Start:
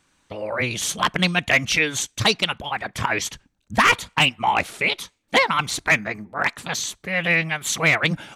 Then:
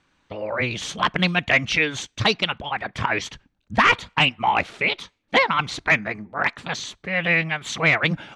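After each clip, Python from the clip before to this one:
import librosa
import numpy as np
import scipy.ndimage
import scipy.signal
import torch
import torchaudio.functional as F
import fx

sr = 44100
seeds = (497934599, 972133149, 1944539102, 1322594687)

y = scipy.signal.sosfilt(scipy.signal.butter(2, 4100.0, 'lowpass', fs=sr, output='sos'), x)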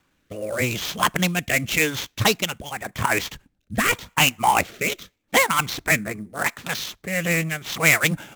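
y = fx.sample_hold(x, sr, seeds[0], rate_hz=9700.0, jitter_pct=20)
y = fx.rotary(y, sr, hz=0.85)
y = F.gain(torch.from_numpy(y), 2.5).numpy()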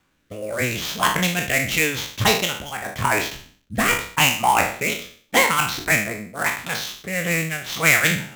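y = fx.spec_trails(x, sr, decay_s=0.49)
y = F.gain(torch.from_numpy(y), -1.0).numpy()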